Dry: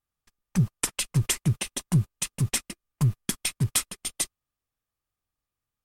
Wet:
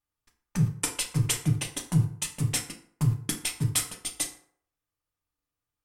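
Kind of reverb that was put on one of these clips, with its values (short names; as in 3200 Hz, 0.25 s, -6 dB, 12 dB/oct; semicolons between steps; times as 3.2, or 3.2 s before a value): FDN reverb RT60 0.58 s, low-frequency decay 0.8×, high-frequency decay 0.6×, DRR 1.5 dB; gain -3 dB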